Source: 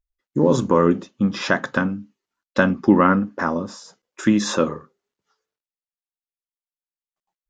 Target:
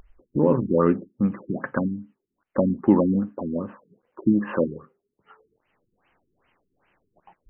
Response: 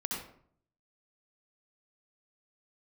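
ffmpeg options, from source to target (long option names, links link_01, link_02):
-af "acompressor=mode=upward:threshold=-23dB:ratio=2.5,afftfilt=real='re*lt(b*sr/1024,400*pow(3200/400,0.5+0.5*sin(2*PI*2.5*pts/sr)))':imag='im*lt(b*sr/1024,400*pow(3200/400,0.5+0.5*sin(2*PI*2.5*pts/sr)))':win_size=1024:overlap=0.75,volume=-2.5dB"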